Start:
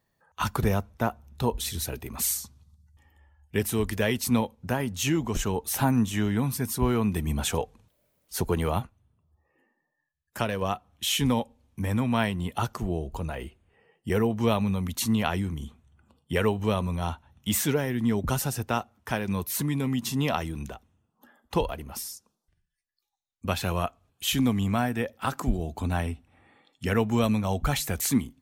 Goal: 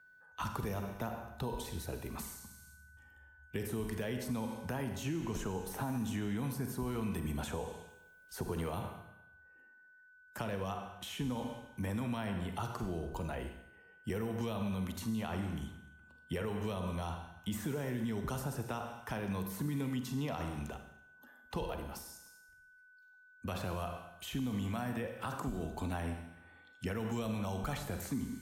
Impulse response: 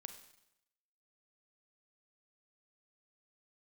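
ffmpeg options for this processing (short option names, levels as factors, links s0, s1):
-filter_complex "[1:a]atrim=start_sample=2205[s0];[0:a][s0]afir=irnorm=-1:irlink=0,acrossover=split=3600[s1][s2];[s1]alimiter=level_in=1.19:limit=0.0631:level=0:latency=1,volume=0.841[s3];[s3][s2]amix=inputs=2:normalize=0,aeval=exprs='val(0)+0.001*sin(2*PI*1500*n/s)':c=same,acrossover=split=160|1600[s4][s5][s6];[s4]acompressor=threshold=0.00794:ratio=4[s7];[s5]acompressor=threshold=0.0141:ratio=4[s8];[s6]acompressor=threshold=0.00316:ratio=4[s9];[s7][s8][s9]amix=inputs=3:normalize=0,volume=1.12"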